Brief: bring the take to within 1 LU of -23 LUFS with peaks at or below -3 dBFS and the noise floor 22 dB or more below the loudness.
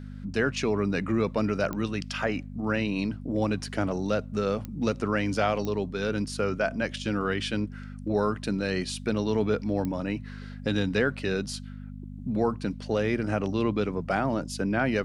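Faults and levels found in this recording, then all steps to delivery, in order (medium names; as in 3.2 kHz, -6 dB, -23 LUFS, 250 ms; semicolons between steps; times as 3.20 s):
clicks found 4; hum 50 Hz; highest harmonic 250 Hz; hum level -37 dBFS; loudness -28.5 LUFS; peak level -12.0 dBFS; loudness target -23.0 LUFS
-> de-click; de-hum 50 Hz, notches 5; trim +5.5 dB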